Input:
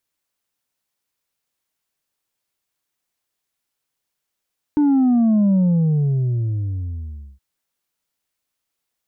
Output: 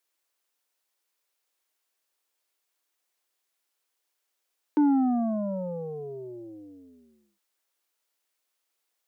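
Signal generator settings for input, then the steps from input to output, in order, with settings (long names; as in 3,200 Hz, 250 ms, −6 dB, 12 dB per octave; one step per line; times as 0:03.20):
bass drop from 300 Hz, over 2.62 s, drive 3 dB, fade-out 1.85 s, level −13 dB
high-pass filter 320 Hz 24 dB per octave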